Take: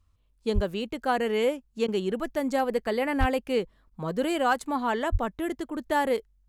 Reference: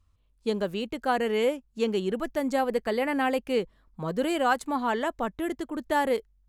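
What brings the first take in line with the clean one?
clipped peaks rebuilt −14.5 dBFS
0:00.54–0:00.66: high-pass filter 140 Hz 24 dB per octave
0:03.19–0:03.31: high-pass filter 140 Hz 24 dB per octave
0:05.11–0:05.23: high-pass filter 140 Hz 24 dB per octave
repair the gap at 0:01.87/0:03.90, 11 ms

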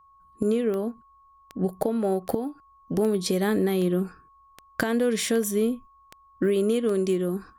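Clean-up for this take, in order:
click removal
notch filter 1,100 Hz, Q 30

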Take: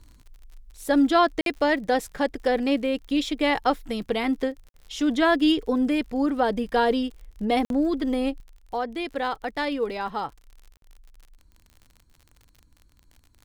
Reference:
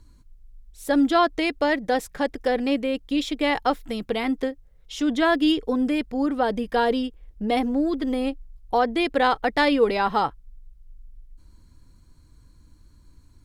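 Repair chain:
click removal
repair the gap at 0:01.41/0:04.69/0:07.65/0:10.77, 52 ms
level correction +7.5 dB, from 0:08.40

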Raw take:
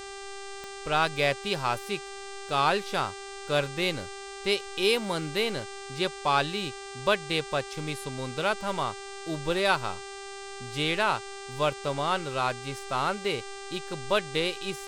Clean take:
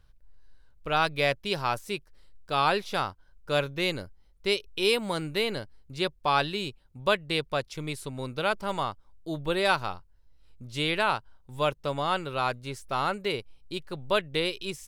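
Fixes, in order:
click removal
hum removal 395 Hz, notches 23

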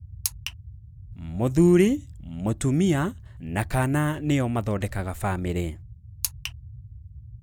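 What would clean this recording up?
noise reduction from a noise print 24 dB

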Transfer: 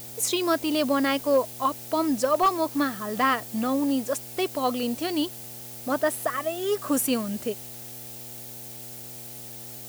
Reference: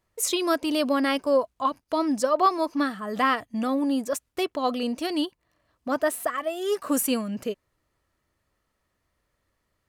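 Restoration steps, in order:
clipped peaks rebuilt −14 dBFS
hum removal 120.8 Hz, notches 7
noise reduction from a noise print 30 dB

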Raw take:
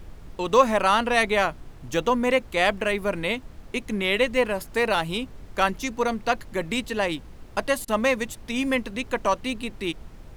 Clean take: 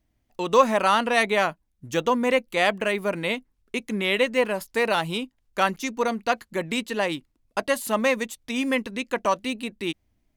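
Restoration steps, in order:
repair the gap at 0:07.85, 29 ms
noise reduction from a noise print 27 dB

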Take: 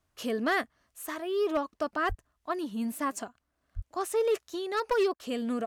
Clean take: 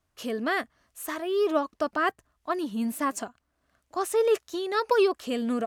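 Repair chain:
clipped peaks rebuilt −21 dBFS
high-pass at the plosives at 0:02.08/0:03.75
repair the gap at 0:05.14, 57 ms
level correction +3.5 dB, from 0:00.65

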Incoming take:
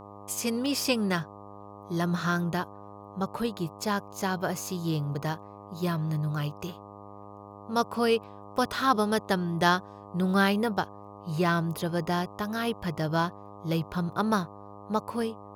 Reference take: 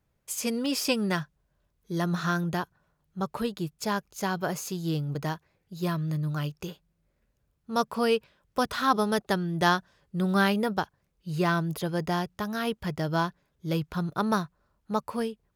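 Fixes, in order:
hum removal 101.6 Hz, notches 12

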